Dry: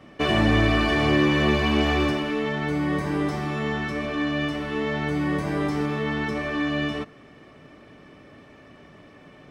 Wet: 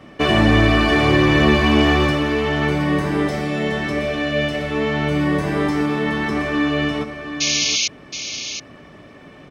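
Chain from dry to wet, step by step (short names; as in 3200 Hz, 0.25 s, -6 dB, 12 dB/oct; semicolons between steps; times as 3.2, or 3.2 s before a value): 3.27–4.71 EQ curve 190 Hz 0 dB, 320 Hz -7 dB, 560 Hz +7 dB, 970 Hz -8 dB, 2100 Hz +1 dB; 7.4–7.88 painted sound noise 2100–6800 Hz -25 dBFS; on a send: echo 0.721 s -9 dB; on the sum: gain +5.5 dB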